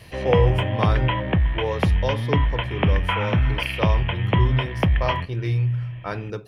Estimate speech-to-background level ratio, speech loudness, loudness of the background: -4.0 dB, -27.0 LUFS, -23.0 LUFS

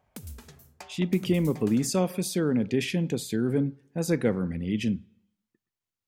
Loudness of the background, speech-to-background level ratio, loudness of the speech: -46.5 LUFS, 19.0 dB, -27.5 LUFS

